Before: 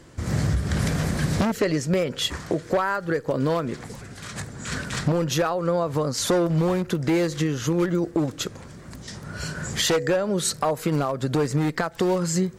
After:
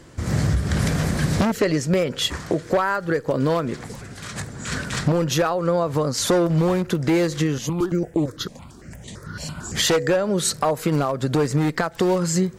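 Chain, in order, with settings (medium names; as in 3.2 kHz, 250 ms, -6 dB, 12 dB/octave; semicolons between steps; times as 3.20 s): 7.58–9.75 s: stepped phaser 8.9 Hz 370–5200 Hz; trim +2.5 dB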